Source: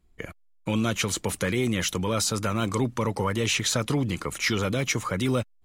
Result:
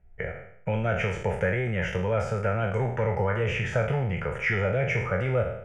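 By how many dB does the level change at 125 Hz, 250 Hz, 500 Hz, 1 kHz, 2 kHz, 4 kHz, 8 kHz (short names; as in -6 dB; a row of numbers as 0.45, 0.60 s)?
+2.0 dB, -6.5 dB, +3.0 dB, -0.5 dB, +1.5 dB, -13.5 dB, under -20 dB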